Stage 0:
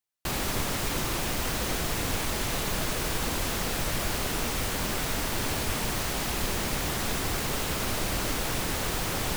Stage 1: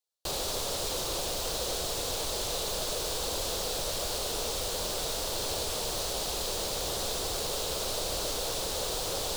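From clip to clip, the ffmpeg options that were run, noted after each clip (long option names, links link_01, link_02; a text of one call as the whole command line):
ffmpeg -i in.wav -filter_complex "[0:a]equalizer=frequency=125:width_type=o:width=1:gain=-4,equalizer=frequency=250:width_type=o:width=1:gain=-8,equalizer=frequency=500:width_type=o:width=1:gain=11,equalizer=frequency=2000:width_type=o:width=1:gain=-10,equalizer=frequency=4000:width_type=o:width=1:gain=9,equalizer=frequency=8000:width_type=o:width=1:gain=4,acrossover=split=660|4600[link_01][link_02][link_03];[link_01]alimiter=level_in=1.5dB:limit=-24dB:level=0:latency=1,volume=-1.5dB[link_04];[link_04][link_02][link_03]amix=inputs=3:normalize=0,volume=-5dB" out.wav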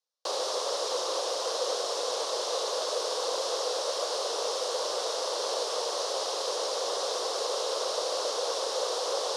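ffmpeg -i in.wav -filter_complex "[0:a]asplit=2[link_01][link_02];[link_02]adynamicsmooth=sensitivity=5:basefreq=580,volume=-7.5dB[link_03];[link_01][link_03]amix=inputs=2:normalize=0,highpass=frequency=420:width=0.5412,highpass=frequency=420:width=1.3066,equalizer=frequency=510:width_type=q:width=4:gain=6,equalizer=frequency=1100:width_type=q:width=4:gain=7,equalizer=frequency=2400:width_type=q:width=4:gain=-5,equalizer=frequency=5400:width_type=q:width=4:gain=5,equalizer=frequency=7800:width_type=q:width=4:gain=-7,lowpass=frequency=8700:width=0.5412,lowpass=frequency=8700:width=1.3066" out.wav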